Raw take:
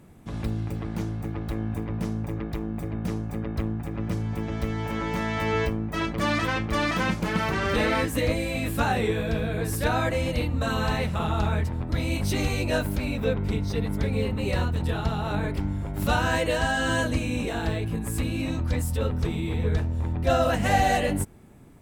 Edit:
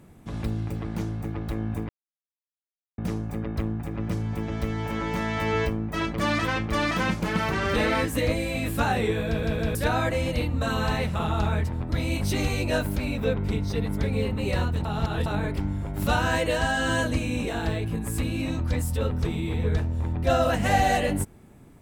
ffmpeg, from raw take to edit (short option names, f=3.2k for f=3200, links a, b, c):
-filter_complex "[0:a]asplit=8[a][b][c][d][e][f][g][h];[a]atrim=end=1.89,asetpts=PTS-STARTPTS,afade=t=out:st=1.886:d=0.004:c=hsin[i];[b]atrim=start=1.89:end=2.98,asetpts=PTS-STARTPTS,volume=0[j];[c]atrim=start=2.98:end=9.432,asetpts=PTS-STARTPTS,afade=t=in:d=0.004:c=hsin[k];[d]atrim=start=9.268:end=9.432[l];[e]atrim=start=9.268:end=9.432[m];[f]atrim=start=9.748:end=14.852[n];[g]atrim=start=14.848:end=15.262,asetpts=PTS-STARTPTS,areverse[o];[h]atrim=start=15.258[p];[i][j][k]concat=n=3:v=0:a=1[q];[q][l]acrossfade=d=0.004:c1=hsin:c2=hsin[r];[r][m]acrossfade=d=0.004:c1=hsin:c2=hsin[s];[s][n]acrossfade=d=0.004:c1=hsin:c2=hsin[t];[t][o]acrossfade=d=0.004:c1=hsin:c2=hsin[u];[u][p]acrossfade=d=0.004:c1=hsin:c2=hsin"